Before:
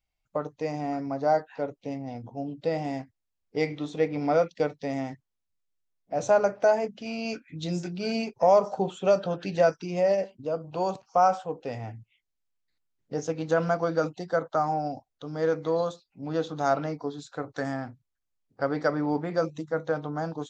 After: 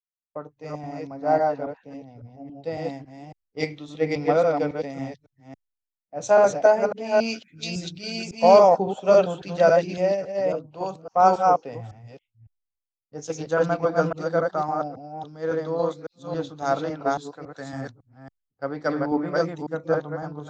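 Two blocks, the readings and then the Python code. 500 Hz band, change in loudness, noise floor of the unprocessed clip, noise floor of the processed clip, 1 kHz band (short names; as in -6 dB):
+4.5 dB, +5.0 dB, -82 dBFS, under -85 dBFS, +5.0 dB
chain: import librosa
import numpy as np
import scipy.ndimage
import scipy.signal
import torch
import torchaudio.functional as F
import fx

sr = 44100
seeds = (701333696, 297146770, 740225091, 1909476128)

y = fx.reverse_delay(x, sr, ms=277, wet_db=-1)
y = fx.band_widen(y, sr, depth_pct=100)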